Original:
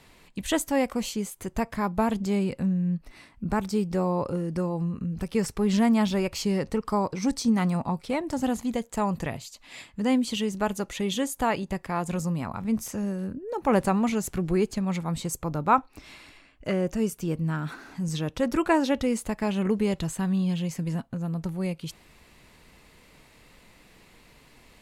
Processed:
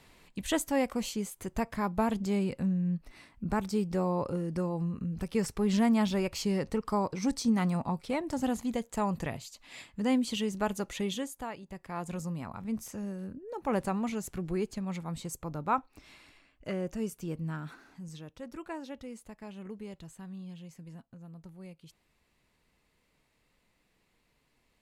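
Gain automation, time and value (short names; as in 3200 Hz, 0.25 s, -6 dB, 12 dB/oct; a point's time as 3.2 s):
11.03 s -4 dB
11.58 s -16.5 dB
12 s -8 dB
17.55 s -8 dB
18.35 s -18 dB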